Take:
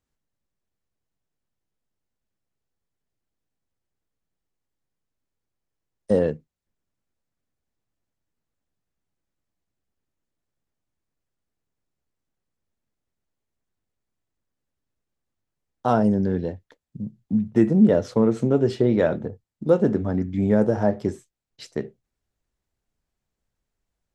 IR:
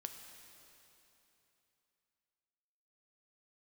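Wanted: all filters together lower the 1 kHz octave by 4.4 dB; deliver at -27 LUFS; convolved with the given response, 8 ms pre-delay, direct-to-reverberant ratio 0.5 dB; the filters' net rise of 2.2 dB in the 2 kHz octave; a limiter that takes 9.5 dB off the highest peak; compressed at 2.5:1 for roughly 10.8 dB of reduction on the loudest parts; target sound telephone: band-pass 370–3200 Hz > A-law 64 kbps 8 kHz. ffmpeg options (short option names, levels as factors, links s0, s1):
-filter_complex "[0:a]equalizer=f=1000:t=o:g=-8,equalizer=f=2000:t=o:g=6.5,acompressor=threshold=0.0398:ratio=2.5,alimiter=limit=0.0668:level=0:latency=1,asplit=2[s0][s1];[1:a]atrim=start_sample=2205,adelay=8[s2];[s1][s2]afir=irnorm=-1:irlink=0,volume=1.33[s3];[s0][s3]amix=inputs=2:normalize=0,highpass=370,lowpass=3200,volume=3.16" -ar 8000 -c:a pcm_alaw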